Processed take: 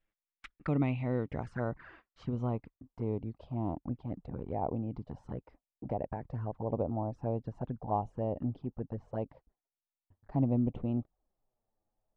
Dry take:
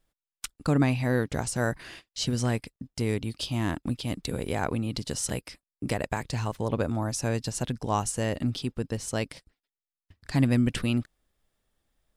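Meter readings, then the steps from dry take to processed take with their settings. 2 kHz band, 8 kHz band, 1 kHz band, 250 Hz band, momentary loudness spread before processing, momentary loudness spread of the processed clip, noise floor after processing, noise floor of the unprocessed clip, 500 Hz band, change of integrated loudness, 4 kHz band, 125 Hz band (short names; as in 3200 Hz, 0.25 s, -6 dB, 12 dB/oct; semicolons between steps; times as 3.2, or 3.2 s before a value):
-16.0 dB, under -40 dB, -5.0 dB, -6.5 dB, 12 LU, 13 LU, under -85 dBFS, under -85 dBFS, -5.5 dB, -7.0 dB, under -25 dB, -6.5 dB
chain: envelope flanger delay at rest 9.6 ms, full sweep at -24 dBFS; low-pass sweep 2400 Hz -> 800 Hz, 0.08–3.61; gain -6.5 dB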